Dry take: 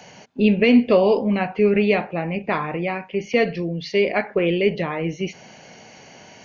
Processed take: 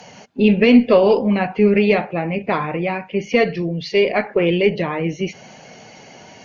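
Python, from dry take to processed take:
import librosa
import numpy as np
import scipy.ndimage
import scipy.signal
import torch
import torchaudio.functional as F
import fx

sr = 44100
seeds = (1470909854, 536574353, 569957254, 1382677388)

y = fx.spec_quant(x, sr, step_db=15)
y = fx.cheby_harmonics(y, sr, harmonics=(2,), levels_db=(-23,), full_scale_db=-5.5)
y = y * 10.0 ** (3.5 / 20.0)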